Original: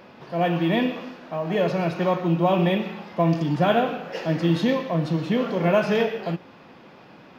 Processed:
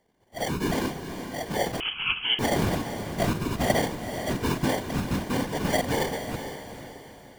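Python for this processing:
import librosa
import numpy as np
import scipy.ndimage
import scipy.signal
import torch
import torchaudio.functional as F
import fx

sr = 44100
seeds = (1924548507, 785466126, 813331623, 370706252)

y = fx.noise_reduce_blind(x, sr, reduce_db=18)
y = fx.sample_hold(y, sr, seeds[0], rate_hz=1300.0, jitter_pct=0)
y = fx.whisperise(y, sr, seeds[1])
y = fx.echo_diffused(y, sr, ms=450, feedback_pct=44, wet_db=-9.0)
y = fx.freq_invert(y, sr, carrier_hz=3200, at=(1.8, 2.39))
y = y * librosa.db_to_amplitude(-4.5)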